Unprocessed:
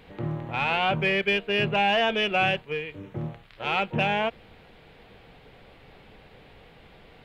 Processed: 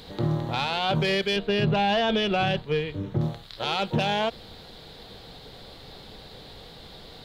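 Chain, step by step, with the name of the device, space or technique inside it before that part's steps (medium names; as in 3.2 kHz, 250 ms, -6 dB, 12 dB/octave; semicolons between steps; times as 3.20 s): 1.36–3.21 s: tone controls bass +6 dB, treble -10 dB; over-bright horn tweeter (resonant high shelf 3.2 kHz +8 dB, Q 3; peak limiter -21 dBFS, peak gain reduction 8.5 dB); trim +5.5 dB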